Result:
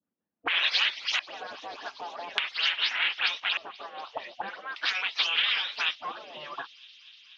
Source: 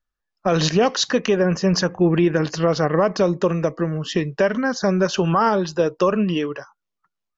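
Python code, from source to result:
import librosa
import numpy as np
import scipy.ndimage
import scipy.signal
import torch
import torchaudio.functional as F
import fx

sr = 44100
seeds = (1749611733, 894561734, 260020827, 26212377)

y = fx.spec_delay(x, sr, highs='late', ms=165)
y = fx.leveller(y, sr, passes=2)
y = fx.filter_lfo_lowpass(y, sr, shape='square', hz=0.42, low_hz=570.0, high_hz=3100.0, q=2.5)
y = fx.spec_gate(y, sr, threshold_db=-20, keep='weak')
y = fx.bass_treble(y, sr, bass_db=-3, treble_db=-11)
y = fx.auto_wah(y, sr, base_hz=230.0, top_hz=3600.0, q=2.0, full_db=-30.5, direction='up')
y = fx.echo_wet_highpass(y, sr, ms=242, feedback_pct=76, hz=4000.0, wet_db=-20.5)
y = fx.band_squash(y, sr, depth_pct=40)
y = y * librosa.db_to_amplitude(8.0)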